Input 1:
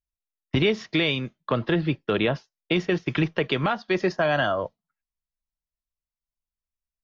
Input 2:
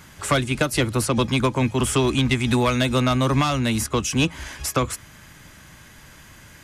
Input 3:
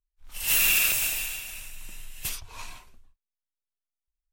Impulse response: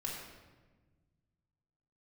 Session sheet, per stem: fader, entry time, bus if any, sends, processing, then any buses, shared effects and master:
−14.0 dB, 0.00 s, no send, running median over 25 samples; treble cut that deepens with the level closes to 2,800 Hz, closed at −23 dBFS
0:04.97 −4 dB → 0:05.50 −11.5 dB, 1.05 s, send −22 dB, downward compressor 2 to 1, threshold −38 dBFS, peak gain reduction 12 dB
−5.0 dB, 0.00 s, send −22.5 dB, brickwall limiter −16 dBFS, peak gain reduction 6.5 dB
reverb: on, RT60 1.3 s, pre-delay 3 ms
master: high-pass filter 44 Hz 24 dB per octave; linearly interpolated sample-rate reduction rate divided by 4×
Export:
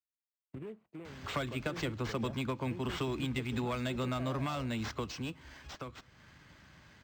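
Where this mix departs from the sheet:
stem 1 −14.0 dB → −22.0 dB
stem 3: muted

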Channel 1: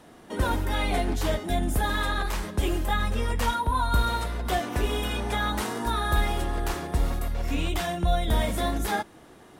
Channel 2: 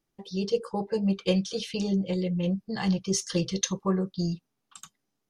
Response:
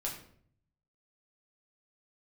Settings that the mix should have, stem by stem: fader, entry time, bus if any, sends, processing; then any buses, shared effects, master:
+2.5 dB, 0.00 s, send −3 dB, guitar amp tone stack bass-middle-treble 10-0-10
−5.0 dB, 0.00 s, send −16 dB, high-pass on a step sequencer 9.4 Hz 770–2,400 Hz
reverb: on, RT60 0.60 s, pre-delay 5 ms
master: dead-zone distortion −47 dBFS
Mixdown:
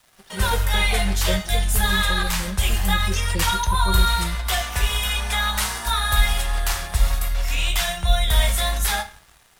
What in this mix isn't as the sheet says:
stem 1 +2.5 dB → +9.0 dB
stem 2: missing high-pass on a step sequencer 9.4 Hz 770–2,400 Hz

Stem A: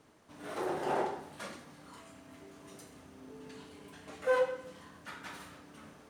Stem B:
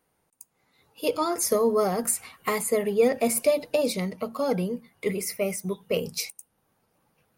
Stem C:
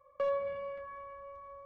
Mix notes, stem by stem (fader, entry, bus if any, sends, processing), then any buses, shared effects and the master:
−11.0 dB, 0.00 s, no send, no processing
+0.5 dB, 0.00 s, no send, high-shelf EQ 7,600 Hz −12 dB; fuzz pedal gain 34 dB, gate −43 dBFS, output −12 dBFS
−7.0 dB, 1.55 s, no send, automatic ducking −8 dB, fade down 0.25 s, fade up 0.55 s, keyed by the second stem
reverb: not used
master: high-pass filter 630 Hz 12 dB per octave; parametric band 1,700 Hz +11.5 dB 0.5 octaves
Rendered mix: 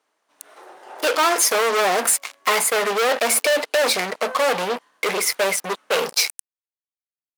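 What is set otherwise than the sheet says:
stem A −11.0 dB → −4.5 dB
master: missing parametric band 1,700 Hz +11.5 dB 0.5 octaves

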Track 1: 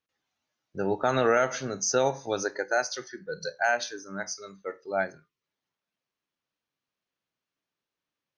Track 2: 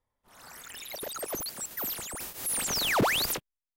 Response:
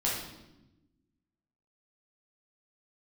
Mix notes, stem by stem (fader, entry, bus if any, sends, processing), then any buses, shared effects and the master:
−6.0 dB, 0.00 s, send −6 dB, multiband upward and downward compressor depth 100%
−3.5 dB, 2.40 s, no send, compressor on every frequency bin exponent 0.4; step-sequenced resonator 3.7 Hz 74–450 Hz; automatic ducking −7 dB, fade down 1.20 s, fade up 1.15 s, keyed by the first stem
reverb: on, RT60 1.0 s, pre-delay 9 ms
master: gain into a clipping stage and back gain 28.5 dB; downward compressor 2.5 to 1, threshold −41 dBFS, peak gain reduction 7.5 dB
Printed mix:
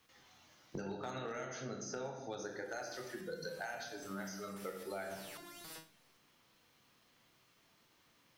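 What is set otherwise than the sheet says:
stem 1 −6.0 dB → −16.5 dB
stem 2 −3.5 dB → −13.0 dB

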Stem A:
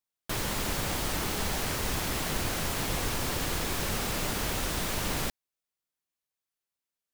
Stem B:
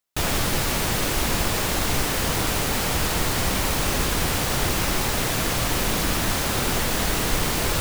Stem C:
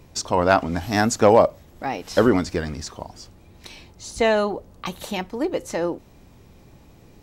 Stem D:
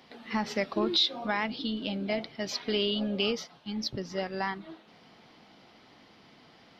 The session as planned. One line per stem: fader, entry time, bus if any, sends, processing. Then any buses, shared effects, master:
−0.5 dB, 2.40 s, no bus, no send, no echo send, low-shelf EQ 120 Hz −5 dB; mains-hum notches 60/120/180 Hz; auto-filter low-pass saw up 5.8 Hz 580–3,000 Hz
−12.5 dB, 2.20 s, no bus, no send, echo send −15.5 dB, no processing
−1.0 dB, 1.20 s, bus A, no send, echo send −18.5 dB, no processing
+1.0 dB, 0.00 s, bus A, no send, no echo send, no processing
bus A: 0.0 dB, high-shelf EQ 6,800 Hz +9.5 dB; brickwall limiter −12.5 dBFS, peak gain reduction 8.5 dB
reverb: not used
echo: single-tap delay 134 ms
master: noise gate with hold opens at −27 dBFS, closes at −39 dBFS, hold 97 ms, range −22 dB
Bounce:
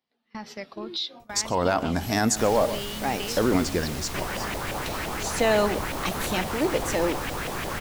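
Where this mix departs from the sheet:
stem A: entry 2.40 s → 3.85 s
stem D +1.0 dB → −7.5 dB

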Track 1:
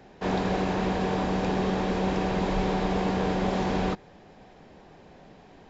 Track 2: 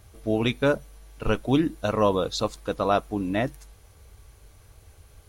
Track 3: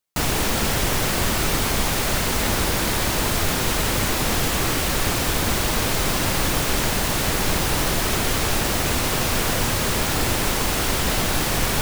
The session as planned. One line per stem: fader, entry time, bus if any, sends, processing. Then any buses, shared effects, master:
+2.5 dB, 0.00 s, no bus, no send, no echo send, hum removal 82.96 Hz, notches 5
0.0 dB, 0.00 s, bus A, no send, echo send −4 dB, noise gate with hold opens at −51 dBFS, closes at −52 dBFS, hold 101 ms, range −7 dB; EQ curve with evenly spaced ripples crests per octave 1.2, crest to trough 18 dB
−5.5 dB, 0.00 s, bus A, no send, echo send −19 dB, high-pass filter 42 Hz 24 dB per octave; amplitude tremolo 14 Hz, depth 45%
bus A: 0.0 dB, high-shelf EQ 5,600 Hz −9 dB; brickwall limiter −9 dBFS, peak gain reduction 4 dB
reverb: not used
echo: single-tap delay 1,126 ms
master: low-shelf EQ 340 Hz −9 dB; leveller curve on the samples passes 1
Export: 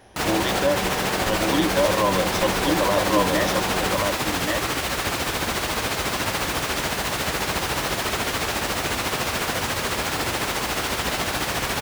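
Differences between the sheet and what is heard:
stem 3 −5.5 dB → +3.0 dB
master: missing leveller curve on the samples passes 1

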